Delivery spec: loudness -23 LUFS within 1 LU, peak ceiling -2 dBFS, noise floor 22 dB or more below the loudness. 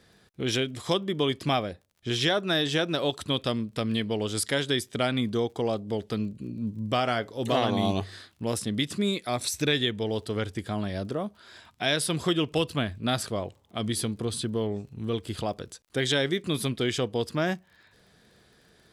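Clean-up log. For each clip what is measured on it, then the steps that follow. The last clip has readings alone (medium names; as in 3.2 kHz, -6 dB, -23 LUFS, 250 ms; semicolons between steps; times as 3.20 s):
tick rate 33 per s; loudness -28.5 LUFS; peak level -12.5 dBFS; loudness target -23.0 LUFS
-> de-click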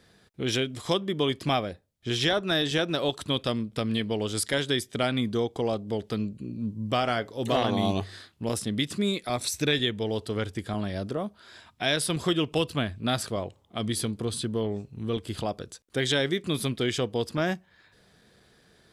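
tick rate 0 per s; loudness -28.5 LUFS; peak level -12.5 dBFS; loudness target -23.0 LUFS
-> trim +5.5 dB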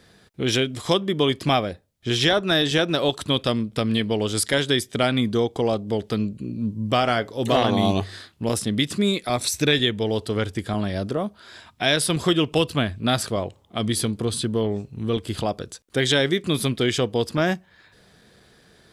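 loudness -23.0 LUFS; peak level -7.0 dBFS; noise floor -57 dBFS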